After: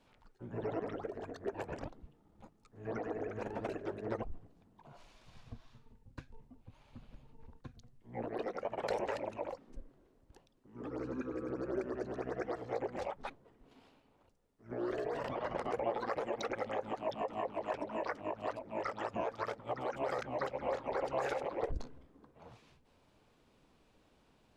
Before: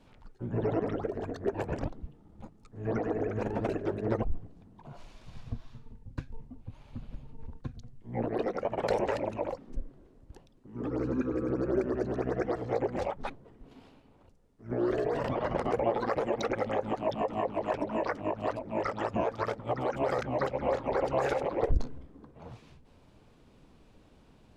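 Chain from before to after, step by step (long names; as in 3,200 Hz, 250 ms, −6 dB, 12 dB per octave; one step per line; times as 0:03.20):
low-shelf EQ 340 Hz −8.5 dB
level −4.5 dB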